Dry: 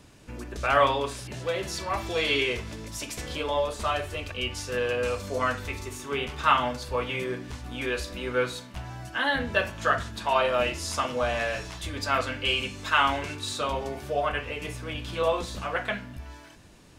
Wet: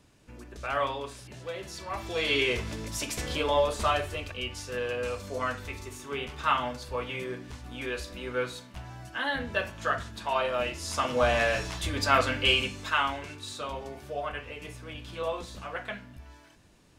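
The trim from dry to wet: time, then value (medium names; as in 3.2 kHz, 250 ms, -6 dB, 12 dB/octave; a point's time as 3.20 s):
1.75 s -8 dB
2.62 s +2 dB
3.85 s +2 dB
4.47 s -4.5 dB
10.78 s -4.5 dB
11.23 s +3 dB
12.50 s +3 dB
13.15 s -7 dB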